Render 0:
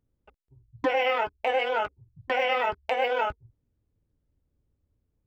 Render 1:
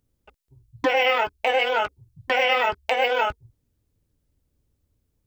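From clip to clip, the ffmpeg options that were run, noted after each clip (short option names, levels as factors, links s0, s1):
-af "highshelf=f=2800:g=9.5,volume=1.41"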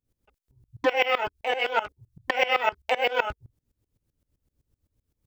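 -af "aeval=exprs='val(0)*pow(10,-20*if(lt(mod(-7.8*n/s,1),2*abs(-7.8)/1000),1-mod(-7.8*n/s,1)/(2*abs(-7.8)/1000),(mod(-7.8*n/s,1)-2*abs(-7.8)/1000)/(1-2*abs(-7.8)/1000))/20)':c=same,volume=1.41"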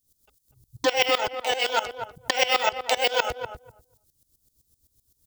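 -filter_complex "[0:a]aexciter=amount=6.4:drive=5.3:freq=3500,asplit=2[s0][s1];[s1]adelay=245,lowpass=f=910:p=1,volume=0.501,asplit=2[s2][s3];[s3]adelay=245,lowpass=f=910:p=1,volume=0.16,asplit=2[s4][s5];[s5]adelay=245,lowpass=f=910:p=1,volume=0.16[s6];[s2][s4][s6]amix=inputs=3:normalize=0[s7];[s0][s7]amix=inputs=2:normalize=0"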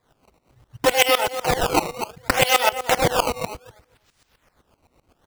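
-af "acrusher=samples=15:mix=1:aa=0.000001:lfo=1:lforange=24:lforate=0.66,volume=1.68"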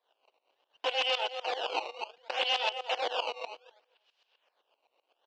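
-af "aeval=exprs='(mod(2.24*val(0)+1,2)-1)/2.24':c=same,aeval=exprs='(tanh(6.31*val(0)+0.5)-tanh(0.5))/6.31':c=same,highpass=f=490:w=0.5412,highpass=f=490:w=1.3066,equalizer=f=1300:t=q:w=4:g=-7,equalizer=f=2000:t=q:w=4:g=-8,equalizer=f=2900:t=q:w=4:g=9,lowpass=f=4600:w=0.5412,lowpass=f=4600:w=1.3066,volume=0.473"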